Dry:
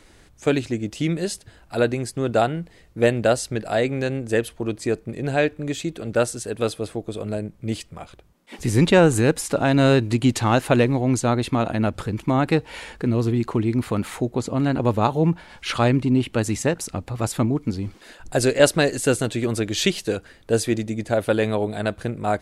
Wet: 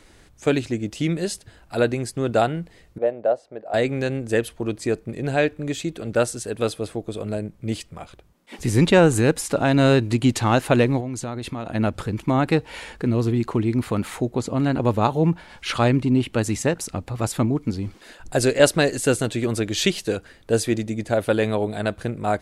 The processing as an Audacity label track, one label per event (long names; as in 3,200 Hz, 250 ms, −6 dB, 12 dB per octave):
2.980000	3.740000	resonant band-pass 630 Hz, Q 2.4
11.000000	11.750000	downward compressor, threshold −26 dBFS